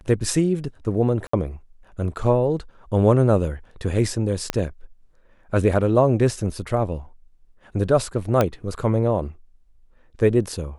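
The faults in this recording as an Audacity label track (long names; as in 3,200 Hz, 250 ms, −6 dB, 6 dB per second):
1.270000	1.330000	drop-out 64 ms
4.500000	4.500000	click −7 dBFS
8.410000	8.410000	click −6 dBFS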